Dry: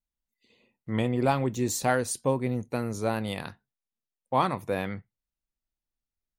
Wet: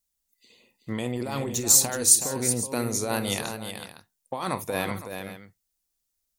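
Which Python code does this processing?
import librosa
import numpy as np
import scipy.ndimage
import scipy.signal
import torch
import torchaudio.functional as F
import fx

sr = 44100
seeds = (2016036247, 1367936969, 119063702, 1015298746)

p1 = fx.over_compress(x, sr, threshold_db=-29.0, ratio=-1.0)
p2 = fx.bass_treble(p1, sr, bass_db=-4, treble_db=13)
p3 = p2 + fx.echo_multitap(p2, sr, ms=(50, 374, 511), db=(-15.5, -8.0, -14.5), dry=0)
y = p3 * librosa.db_to_amplitude(1.0)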